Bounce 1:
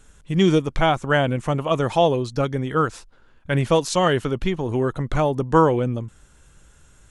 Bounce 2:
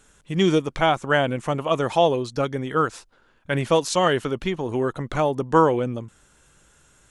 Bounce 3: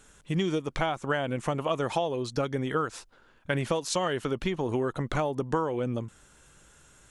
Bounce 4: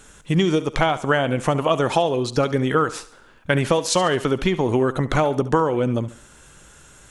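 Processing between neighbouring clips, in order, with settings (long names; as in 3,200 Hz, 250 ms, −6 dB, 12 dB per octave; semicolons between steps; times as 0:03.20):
low-shelf EQ 120 Hz −12 dB
downward compressor 12 to 1, threshold −24 dBFS, peak gain reduction 13.5 dB
feedback echo with a high-pass in the loop 70 ms, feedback 44%, high-pass 160 Hz, level −15.5 dB; level +9 dB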